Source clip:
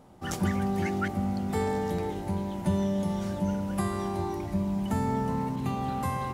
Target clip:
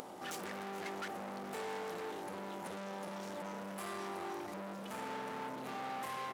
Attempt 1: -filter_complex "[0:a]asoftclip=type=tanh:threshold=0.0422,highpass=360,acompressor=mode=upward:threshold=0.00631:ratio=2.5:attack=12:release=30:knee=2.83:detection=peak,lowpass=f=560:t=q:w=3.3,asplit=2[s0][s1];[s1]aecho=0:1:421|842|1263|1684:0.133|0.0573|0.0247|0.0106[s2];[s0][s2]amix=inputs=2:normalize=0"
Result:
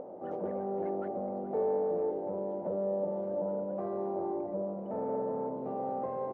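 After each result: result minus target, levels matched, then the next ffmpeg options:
500 Hz band +4.5 dB; saturation: distortion -6 dB
-filter_complex "[0:a]asoftclip=type=tanh:threshold=0.0422,highpass=360,acompressor=mode=upward:threshold=0.00631:ratio=2.5:attack=12:release=30:knee=2.83:detection=peak,asplit=2[s0][s1];[s1]aecho=0:1:421|842|1263|1684:0.133|0.0573|0.0247|0.0106[s2];[s0][s2]amix=inputs=2:normalize=0"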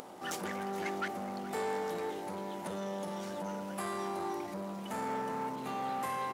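saturation: distortion -6 dB
-filter_complex "[0:a]asoftclip=type=tanh:threshold=0.0133,highpass=360,acompressor=mode=upward:threshold=0.00631:ratio=2.5:attack=12:release=30:knee=2.83:detection=peak,asplit=2[s0][s1];[s1]aecho=0:1:421|842|1263|1684:0.133|0.0573|0.0247|0.0106[s2];[s0][s2]amix=inputs=2:normalize=0"

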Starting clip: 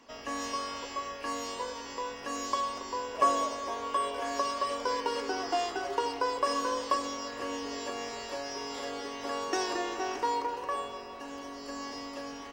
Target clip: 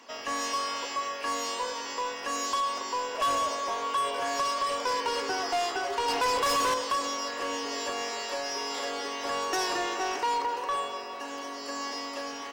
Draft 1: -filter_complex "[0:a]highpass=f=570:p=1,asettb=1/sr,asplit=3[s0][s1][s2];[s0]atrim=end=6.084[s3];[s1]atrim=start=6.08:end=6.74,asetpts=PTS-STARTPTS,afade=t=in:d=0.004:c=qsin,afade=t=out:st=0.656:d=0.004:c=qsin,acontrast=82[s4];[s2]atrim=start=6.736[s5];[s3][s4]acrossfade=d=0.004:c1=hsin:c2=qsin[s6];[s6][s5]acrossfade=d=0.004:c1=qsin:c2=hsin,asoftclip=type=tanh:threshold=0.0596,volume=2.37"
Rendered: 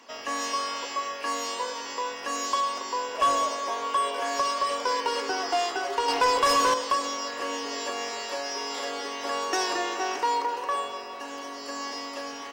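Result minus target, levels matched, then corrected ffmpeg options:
saturation: distortion -5 dB
-filter_complex "[0:a]highpass=f=570:p=1,asettb=1/sr,asplit=3[s0][s1][s2];[s0]atrim=end=6.084[s3];[s1]atrim=start=6.08:end=6.74,asetpts=PTS-STARTPTS,afade=t=in:d=0.004:c=qsin,afade=t=out:st=0.656:d=0.004:c=qsin,acontrast=82[s4];[s2]atrim=start=6.736[s5];[s3][s4]acrossfade=d=0.004:c1=hsin:c2=qsin[s6];[s6][s5]acrossfade=d=0.004:c1=qsin:c2=hsin,asoftclip=type=tanh:threshold=0.0282,volume=2.37"

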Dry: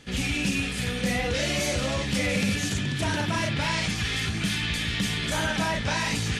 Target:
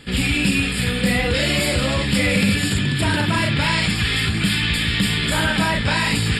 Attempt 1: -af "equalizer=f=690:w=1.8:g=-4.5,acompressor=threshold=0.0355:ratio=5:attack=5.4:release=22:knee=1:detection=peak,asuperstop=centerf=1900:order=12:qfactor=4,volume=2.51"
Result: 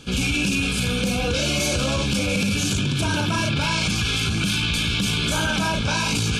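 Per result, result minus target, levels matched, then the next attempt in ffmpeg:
compression: peak gain reduction +6.5 dB; 8 kHz band +4.5 dB
-af "asuperstop=centerf=1900:order=12:qfactor=4,equalizer=f=690:w=1.8:g=-4.5,volume=2.51"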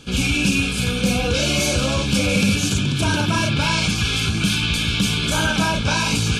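8 kHz band +4.0 dB
-af "asuperstop=centerf=6100:order=12:qfactor=4,equalizer=f=690:w=1.8:g=-4.5,volume=2.51"

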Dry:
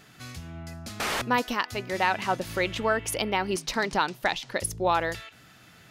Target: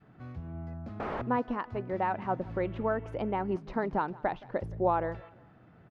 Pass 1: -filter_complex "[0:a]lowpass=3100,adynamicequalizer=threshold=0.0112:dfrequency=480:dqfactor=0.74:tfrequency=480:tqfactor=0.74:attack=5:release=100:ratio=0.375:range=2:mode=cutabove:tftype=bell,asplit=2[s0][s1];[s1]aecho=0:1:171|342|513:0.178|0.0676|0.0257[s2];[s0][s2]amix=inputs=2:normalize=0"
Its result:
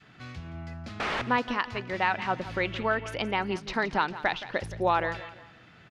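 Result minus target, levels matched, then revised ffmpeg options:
4 kHz band +16.0 dB; echo-to-direct +7 dB
-filter_complex "[0:a]lowpass=870,adynamicequalizer=threshold=0.0112:dfrequency=480:dqfactor=0.74:tfrequency=480:tqfactor=0.74:attack=5:release=100:ratio=0.375:range=2:mode=cutabove:tftype=bell,asplit=2[s0][s1];[s1]aecho=0:1:171|342|513:0.0794|0.0302|0.0115[s2];[s0][s2]amix=inputs=2:normalize=0"

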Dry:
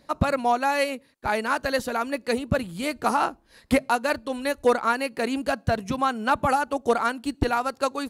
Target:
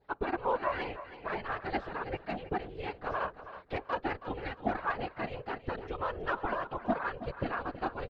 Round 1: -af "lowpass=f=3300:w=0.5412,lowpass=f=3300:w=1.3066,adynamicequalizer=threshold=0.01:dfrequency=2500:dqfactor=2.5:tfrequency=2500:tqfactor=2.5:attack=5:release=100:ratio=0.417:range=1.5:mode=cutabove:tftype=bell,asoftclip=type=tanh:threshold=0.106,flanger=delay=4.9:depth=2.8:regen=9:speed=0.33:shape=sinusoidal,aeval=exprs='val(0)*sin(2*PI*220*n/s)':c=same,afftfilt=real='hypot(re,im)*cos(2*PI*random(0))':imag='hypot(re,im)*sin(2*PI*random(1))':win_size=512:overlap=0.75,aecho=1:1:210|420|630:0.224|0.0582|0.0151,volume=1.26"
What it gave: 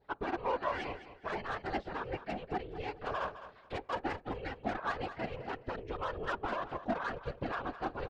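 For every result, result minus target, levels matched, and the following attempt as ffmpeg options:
saturation: distortion +13 dB; echo 113 ms early
-af "lowpass=f=3300:w=0.5412,lowpass=f=3300:w=1.3066,adynamicequalizer=threshold=0.01:dfrequency=2500:dqfactor=2.5:tfrequency=2500:tqfactor=2.5:attack=5:release=100:ratio=0.417:range=1.5:mode=cutabove:tftype=bell,asoftclip=type=tanh:threshold=0.316,flanger=delay=4.9:depth=2.8:regen=9:speed=0.33:shape=sinusoidal,aeval=exprs='val(0)*sin(2*PI*220*n/s)':c=same,afftfilt=real='hypot(re,im)*cos(2*PI*random(0))':imag='hypot(re,im)*sin(2*PI*random(1))':win_size=512:overlap=0.75,aecho=1:1:210|420|630:0.224|0.0582|0.0151,volume=1.26"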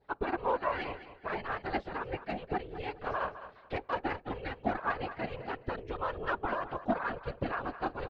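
echo 113 ms early
-af "lowpass=f=3300:w=0.5412,lowpass=f=3300:w=1.3066,adynamicequalizer=threshold=0.01:dfrequency=2500:dqfactor=2.5:tfrequency=2500:tqfactor=2.5:attack=5:release=100:ratio=0.417:range=1.5:mode=cutabove:tftype=bell,asoftclip=type=tanh:threshold=0.316,flanger=delay=4.9:depth=2.8:regen=9:speed=0.33:shape=sinusoidal,aeval=exprs='val(0)*sin(2*PI*220*n/s)':c=same,afftfilt=real='hypot(re,im)*cos(2*PI*random(0))':imag='hypot(re,im)*sin(2*PI*random(1))':win_size=512:overlap=0.75,aecho=1:1:323|646|969:0.224|0.0582|0.0151,volume=1.26"

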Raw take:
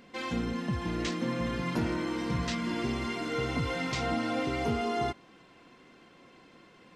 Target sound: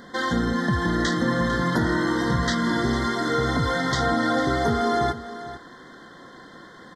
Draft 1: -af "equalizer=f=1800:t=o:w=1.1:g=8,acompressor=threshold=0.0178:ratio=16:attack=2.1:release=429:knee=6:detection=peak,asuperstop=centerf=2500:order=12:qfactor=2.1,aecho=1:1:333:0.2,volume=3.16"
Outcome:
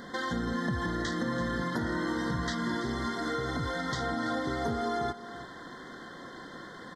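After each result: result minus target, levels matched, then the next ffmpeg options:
compression: peak gain reduction +10.5 dB; echo 118 ms early
-af "equalizer=f=1800:t=o:w=1.1:g=8,acompressor=threshold=0.0668:ratio=16:attack=2.1:release=429:knee=6:detection=peak,asuperstop=centerf=2500:order=12:qfactor=2.1,aecho=1:1:333:0.2,volume=3.16"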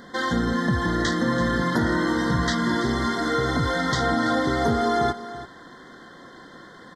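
echo 118 ms early
-af "equalizer=f=1800:t=o:w=1.1:g=8,acompressor=threshold=0.0668:ratio=16:attack=2.1:release=429:knee=6:detection=peak,asuperstop=centerf=2500:order=12:qfactor=2.1,aecho=1:1:451:0.2,volume=3.16"

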